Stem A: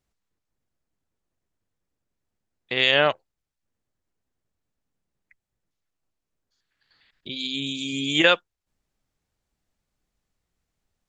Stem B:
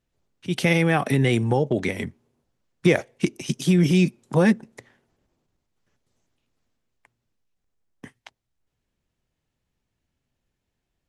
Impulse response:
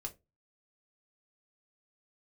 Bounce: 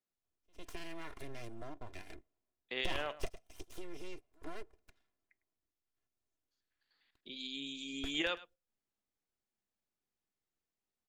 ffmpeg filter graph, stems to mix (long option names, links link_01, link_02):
-filter_complex "[0:a]highpass=frequency=170:width=0.5412,highpass=frequency=170:width=1.3066,volume=-16dB,asplit=4[link_01][link_02][link_03][link_04];[link_02]volume=-7dB[link_05];[link_03]volume=-17dB[link_06];[1:a]aeval=exprs='abs(val(0))':channel_layout=same,aecho=1:1:2.9:0.56,acompressor=threshold=-22dB:ratio=2,volume=-4dB,asplit=2[link_07][link_08];[link_08]volume=-16.5dB[link_09];[link_04]apad=whole_len=489035[link_10];[link_07][link_10]sidechaingate=range=-42dB:threshold=-59dB:ratio=16:detection=peak[link_11];[2:a]atrim=start_sample=2205[link_12];[link_05][link_12]afir=irnorm=-1:irlink=0[link_13];[link_06][link_09]amix=inputs=2:normalize=0,aecho=0:1:103:1[link_14];[link_01][link_11][link_13][link_14]amix=inputs=4:normalize=0,alimiter=limit=-23dB:level=0:latency=1:release=375"